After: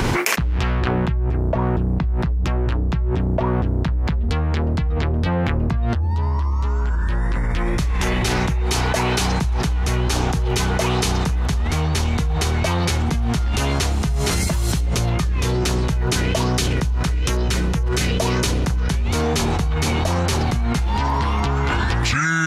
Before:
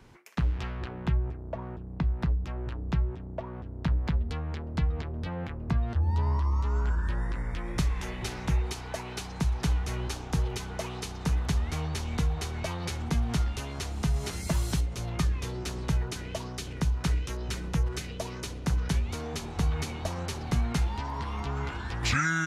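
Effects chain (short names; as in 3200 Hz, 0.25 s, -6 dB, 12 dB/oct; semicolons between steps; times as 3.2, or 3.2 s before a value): fast leveller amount 100%; gain +2.5 dB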